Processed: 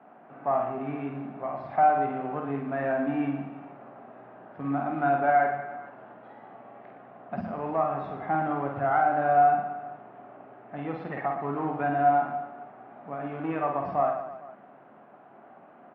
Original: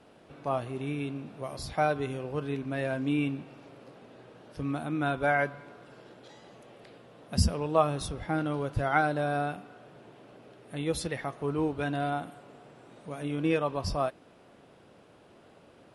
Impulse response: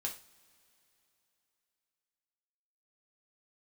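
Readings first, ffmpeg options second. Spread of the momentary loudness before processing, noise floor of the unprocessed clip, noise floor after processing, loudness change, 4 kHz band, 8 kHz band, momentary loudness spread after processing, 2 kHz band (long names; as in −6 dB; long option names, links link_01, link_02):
14 LU, −57 dBFS, −53 dBFS, +3.5 dB, below −15 dB, below −35 dB, 20 LU, 0.0 dB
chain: -filter_complex "[0:a]aemphasis=mode=reproduction:type=cd,alimiter=limit=-19dB:level=0:latency=1:release=281,acrusher=bits=5:mode=log:mix=0:aa=0.000001,asoftclip=type=tanh:threshold=-20.5dB,highpass=frequency=160:width=0.5412,highpass=frequency=160:width=1.3066,equalizer=frequency=170:width_type=q:width=4:gain=-5,equalizer=frequency=330:width_type=q:width=4:gain=-5,equalizer=frequency=480:width_type=q:width=4:gain=-9,equalizer=frequency=740:width_type=q:width=4:gain=9,equalizer=frequency=1200:width_type=q:width=4:gain=3,lowpass=frequency=2000:width=0.5412,lowpass=frequency=2000:width=1.3066,asplit=2[link_01][link_02];[link_02]aecho=0:1:50|115|199.5|309.4|452.2:0.631|0.398|0.251|0.158|0.1[link_03];[link_01][link_03]amix=inputs=2:normalize=0,volume=2.5dB" -ar 44100 -c:a aac -b:a 48k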